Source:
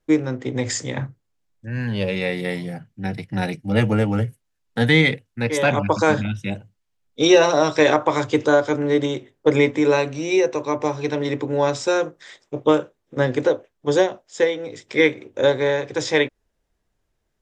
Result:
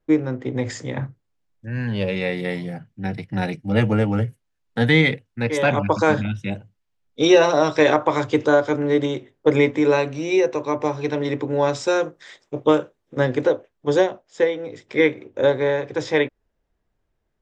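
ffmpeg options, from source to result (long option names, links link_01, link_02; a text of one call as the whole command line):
ffmpeg -i in.wav -af "asetnsamples=nb_out_samples=441:pad=0,asendcmd='1.03 lowpass f 4300;11.7 lowpass f 7600;13.27 lowpass f 4000;14.11 lowpass f 2300',lowpass=frequency=2000:poles=1" out.wav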